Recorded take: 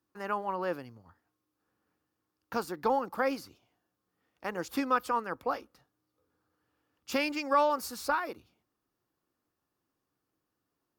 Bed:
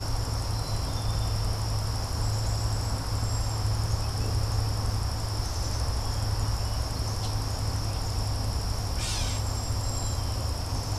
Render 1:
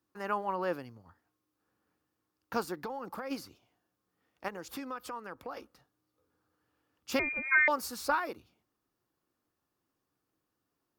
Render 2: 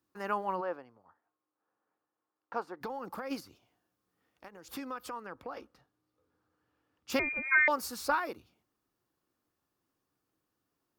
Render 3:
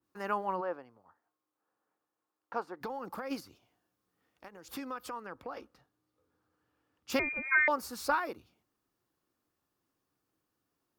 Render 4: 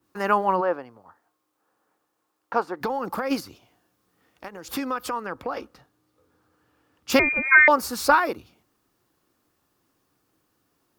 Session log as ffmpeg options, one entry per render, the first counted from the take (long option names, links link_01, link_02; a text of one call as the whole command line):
ffmpeg -i in.wav -filter_complex "[0:a]asplit=3[link_01][link_02][link_03];[link_01]afade=type=out:start_time=2.74:duration=0.02[link_04];[link_02]acompressor=threshold=-35dB:ratio=8:attack=3.2:release=140:knee=1:detection=peak,afade=type=in:start_time=2.74:duration=0.02,afade=type=out:start_time=3.3:duration=0.02[link_05];[link_03]afade=type=in:start_time=3.3:duration=0.02[link_06];[link_04][link_05][link_06]amix=inputs=3:normalize=0,asettb=1/sr,asplit=3[link_07][link_08][link_09];[link_07]atrim=end=4.484[link_10];[link_08]atrim=start=4.48:end=5.57,asetpts=PTS-STARTPTS,afade=type=in:duration=0.004:curve=qsin,afade=type=out:start_time=1.086:duration=0.004:curve=qsin,acompressor=threshold=-40dB:ratio=3:attack=3.2:release=140:knee=1:detection=peak[link_11];[link_09]atrim=start=5.566[link_12];[link_10][link_11]acrossfade=duration=0.004:curve1=hsin:curve2=qsin[link_13];[link_13][link_12]acrossfade=duration=0.004:curve1=qsin:curve2=hsin,asettb=1/sr,asplit=3[link_14][link_15][link_16];[link_14]atrim=end=7.194[link_17];[link_15]atrim=start=7.19:end=7.68,asetpts=PTS-STARTPTS,afade=type=in:duration=0.004:curve=qsin,afade=type=out:start_time=0.486:duration=0.004:curve=qsin,lowpass=frequency=2300:width_type=q:width=0.5098,lowpass=frequency=2300:width_type=q:width=0.6013,lowpass=frequency=2300:width_type=q:width=0.9,lowpass=frequency=2300:width_type=q:width=2.563,afreqshift=-2700[link_18];[link_16]atrim=start=7.676[link_19];[link_17][link_18]acrossfade=duration=0.004:curve1=hsin:curve2=qsin[link_20];[link_20][link_19]acrossfade=duration=0.004:curve1=qsin:curve2=hsin" out.wav
ffmpeg -i in.wav -filter_complex "[0:a]asplit=3[link_01][link_02][link_03];[link_01]afade=type=out:start_time=0.6:duration=0.02[link_04];[link_02]bandpass=frequency=830:width_type=q:width=1,afade=type=in:start_time=0.6:duration=0.02,afade=type=out:start_time=2.8:duration=0.02[link_05];[link_03]afade=type=in:start_time=2.8:duration=0.02[link_06];[link_04][link_05][link_06]amix=inputs=3:normalize=0,asettb=1/sr,asplit=3[link_07][link_08][link_09];[link_07]atrim=end=3.404[link_10];[link_08]atrim=start=3.4:end=4.68,asetpts=PTS-STARTPTS,afade=type=in:duration=0.004:curve=qsin,afade=type=out:start_time=1.276:duration=0.004:curve=qsin,acompressor=threshold=-51dB:ratio=2.5:attack=3.2:release=140:knee=1:detection=peak[link_11];[link_09]atrim=start=4.676[link_12];[link_10][link_11]acrossfade=duration=0.004:curve1=hsin:curve2=qsin[link_13];[link_13][link_12]acrossfade=duration=0.004:curve1=qsin:curve2=hsin,asettb=1/sr,asplit=3[link_14][link_15][link_16];[link_14]atrim=end=5.234[link_17];[link_15]atrim=start=5.23:end=7.1,asetpts=PTS-STARTPTS,afade=type=in:duration=0.004:curve=qsin,afade=type=out:start_time=1.866:duration=0.004:curve=qsin,lowpass=frequency=4000:poles=1[link_18];[link_16]atrim=start=7.096[link_19];[link_17][link_18]acrossfade=duration=0.004:curve1=hsin:curve2=qsin[link_20];[link_20][link_19]acrossfade=duration=0.004:curve1=qsin:curve2=hsin" out.wav
ffmpeg -i in.wav -af "adynamicequalizer=threshold=0.00708:dfrequency=2100:dqfactor=0.7:tfrequency=2100:tqfactor=0.7:attack=5:release=100:ratio=0.375:range=3:mode=cutabove:tftype=highshelf" out.wav
ffmpeg -i in.wav -af "volume=12dB" out.wav